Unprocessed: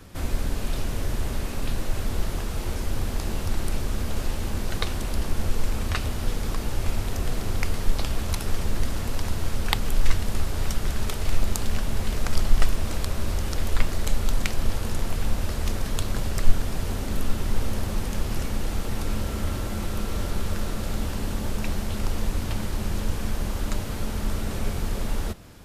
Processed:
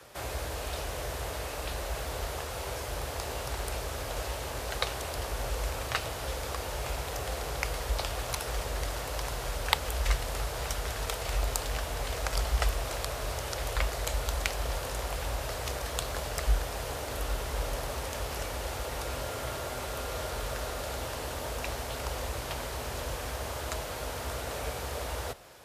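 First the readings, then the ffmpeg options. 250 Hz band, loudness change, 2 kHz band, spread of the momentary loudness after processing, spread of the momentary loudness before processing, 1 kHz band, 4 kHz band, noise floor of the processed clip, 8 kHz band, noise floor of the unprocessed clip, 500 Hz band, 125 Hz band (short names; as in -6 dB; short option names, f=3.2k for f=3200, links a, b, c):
-13.0 dB, -4.0 dB, -0.5 dB, 5 LU, 2 LU, +1.0 dB, -1.0 dB, -38 dBFS, -1.0 dB, -31 dBFS, 0.0 dB, -8.0 dB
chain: -af "afreqshift=39,lowshelf=f=360:t=q:w=1.5:g=-13,volume=-1dB"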